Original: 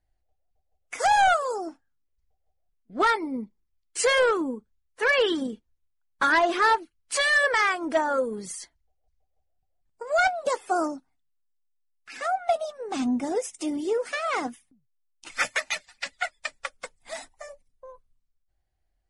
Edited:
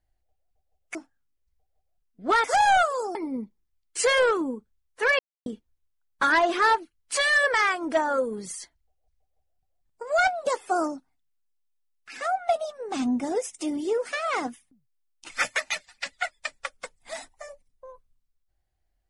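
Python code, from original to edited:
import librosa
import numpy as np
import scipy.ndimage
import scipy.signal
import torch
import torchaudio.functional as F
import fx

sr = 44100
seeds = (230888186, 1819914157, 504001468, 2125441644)

y = fx.edit(x, sr, fx.move(start_s=0.95, length_s=0.71, to_s=3.15),
    fx.silence(start_s=5.19, length_s=0.27), tone=tone)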